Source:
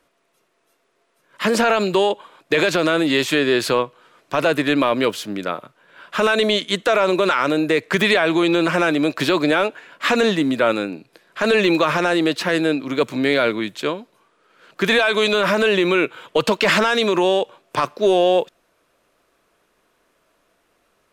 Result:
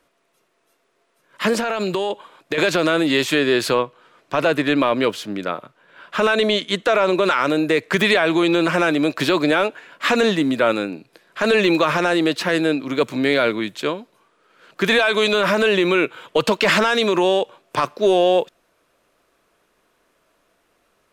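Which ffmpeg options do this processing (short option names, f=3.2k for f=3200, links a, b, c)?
-filter_complex "[0:a]asettb=1/sr,asplit=3[a][b][c];[a]atrim=end=1.534[d];[b]atrim=start=1.53:end=2.58,asetpts=PTS-STARTPTS,afade=t=in:d=0.004:c=qsin,afade=t=out:st=1.046:d=0.004:c=qsin,acompressor=threshold=-18dB:ratio=6:attack=3.2:release=140:knee=1:detection=peak[e];[c]atrim=start=2.576[f];[d][e]acrossfade=d=0.004:c1=hsin:c2=qsin[g];[g][f]acrossfade=d=0.004:c1=qsin:c2=hsin,asettb=1/sr,asplit=3[h][i][j];[h]atrim=end=3.744[k];[i]atrim=start=3.74:end=7.25,asetpts=PTS-STARTPTS,afade=t=in:d=0.004:c=qsin,afade=t=out:st=3.506:d=0.004:c=qsin,highshelf=f=7.2k:g=-6.5[l];[j]atrim=start=7.246[m];[k][l]acrossfade=d=0.004:c1=hsin:c2=qsin[n];[n][m]acrossfade=d=0.004:c1=qsin:c2=hsin"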